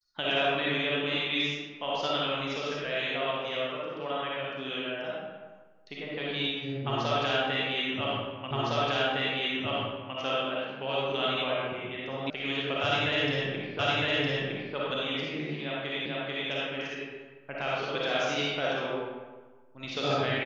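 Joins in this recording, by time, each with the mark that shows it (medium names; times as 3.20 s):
8.51 s: repeat of the last 1.66 s
12.30 s: sound stops dead
13.79 s: repeat of the last 0.96 s
16.06 s: repeat of the last 0.44 s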